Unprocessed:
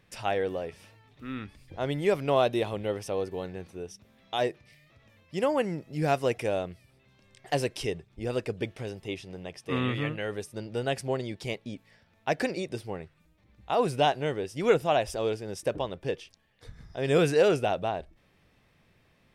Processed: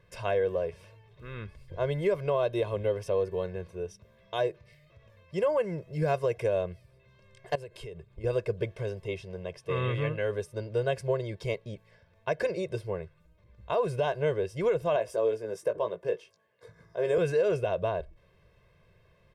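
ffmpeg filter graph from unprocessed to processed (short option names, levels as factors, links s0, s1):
-filter_complex "[0:a]asettb=1/sr,asplit=3[s0][s1][s2];[s0]atrim=end=7.554[s3];[s1]atrim=start=7.55:end=8.24,asetpts=PTS-STARTPTS,afade=t=in:d=0.004:c=qsin,afade=t=out:st=0.686:d=0.004:c=qsin,bandreject=f=5700:w=5.6,acompressor=threshold=0.0112:ratio=20:attack=3.2:release=140:knee=1:detection=peak[s4];[s2]atrim=start=8.236[s5];[s3][s4]acrossfade=d=0.004:c1=hsin:c2=qsin[s6];[s6][s5]acrossfade=d=0.004:c1=qsin:c2=hsin,asettb=1/sr,asplit=3[s7][s8][s9];[s7]atrim=end=14.964[s10];[s8]atrim=start=14.96:end=17.18,asetpts=PTS-STARTPTS,afade=t=in:d=0.004:c=qsin,afade=t=out:st=2.216:d=0.004:c=qsin,highpass=230,equalizer=f=3500:w=0.88:g=-5.5,asplit=2[s11][s12];[s12]adelay=18,volume=0.422[s13];[s11][s13]amix=inputs=2:normalize=0,atrim=end_sample=97902[s14];[s9]atrim=start=17.176[s15];[s10][s14]acrossfade=d=0.004:c1=hsin:c2=qsin[s16];[s16][s15]acrossfade=d=0.004:c1=qsin:c2=hsin,highshelf=f=2300:g=-9.5,aecho=1:1:1.9:0.94,alimiter=limit=0.126:level=0:latency=1:release=179"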